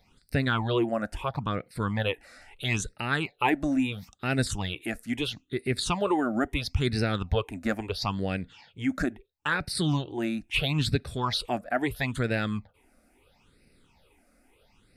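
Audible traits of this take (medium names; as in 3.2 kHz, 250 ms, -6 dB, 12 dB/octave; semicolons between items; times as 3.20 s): phasing stages 8, 0.75 Hz, lowest notch 120–1000 Hz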